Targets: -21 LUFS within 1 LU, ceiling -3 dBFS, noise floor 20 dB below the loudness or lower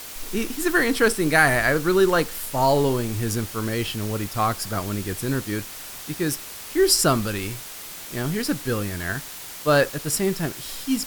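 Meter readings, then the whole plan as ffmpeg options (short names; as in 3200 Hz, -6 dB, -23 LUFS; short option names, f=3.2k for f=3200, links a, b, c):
noise floor -38 dBFS; noise floor target -43 dBFS; loudness -23.0 LUFS; peak -3.0 dBFS; loudness target -21.0 LUFS
-> -af "afftdn=nr=6:nf=-38"
-af "volume=2dB,alimiter=limit=-3dB:level=0:latency=1"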